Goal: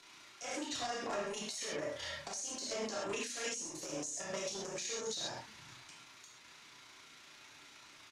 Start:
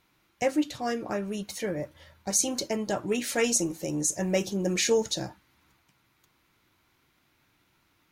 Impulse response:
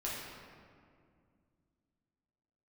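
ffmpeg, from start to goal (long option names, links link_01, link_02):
-filter_complex "[0:a]tremolo=f=29:d=0.889,acrossover=split=120[link_01][link_02];[link_01]aecho=1:1:413:0.266[link_03];[link_02]acompressor=threshold=-39dB:ratio=16[link_04];[link_03][link_04]amix=inputs=2:normalize=0,asoftclip=type=hard:threshold=-38dB,acrossover=split=240[link_05][link_06];[link_05]acompressor=threshold=-56dB:ratio=3[link_07];[link_07][link_06]amix=inputs=2:normalize=0,aemphasis=mode=production:type=riaa[link_08];[1:a]atrim=start_sample=2205,atrim=end_sample=6174[link_09];[link_08][link_09]afir=irnorm=-1:irlink=0,alimiter=level_in=15dB:limit=-24dB:level=0:latency=1:release=273,volume=-15dB,lowpass=frequency=7300:width=0.5412,lowpass=frequency=7300:width=1.3066,volume=12dB"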